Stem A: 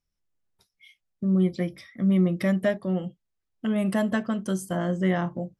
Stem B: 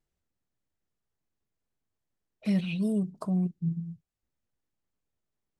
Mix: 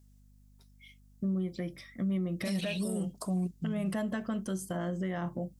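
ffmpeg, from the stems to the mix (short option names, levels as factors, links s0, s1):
-filter_complex "[0:a]acompressor=threshold=0.0631:ratio=6,volume=0.708[s0];[1:a]bass=f=250:g=-7,treble=f=4000:g=15,aeval=exprs='val(0)+0.000891*(sin(2*PI*50*n/s)+sin(2*PI*2*50*n/s)/2+sin(2*PI*3*50*n/s)/3+sin(2*PI*4*50*n/s)/4+sin(2*PI*5*50*n/s)/5)':c=same,volume=1.33[s1];[s0][s1]amix=inputs=2:normalize=0,alimiter=level_in=1.19:limit=0.0631:level=0:latency=1:release=61,volume=0.841"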